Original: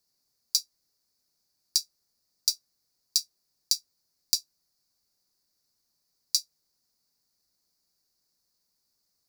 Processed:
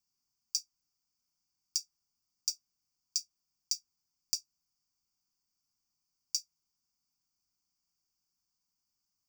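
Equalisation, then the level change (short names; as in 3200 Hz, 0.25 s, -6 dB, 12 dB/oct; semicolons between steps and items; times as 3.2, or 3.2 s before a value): fixed phaser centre 2700 Hz, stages 8; -5.5 dB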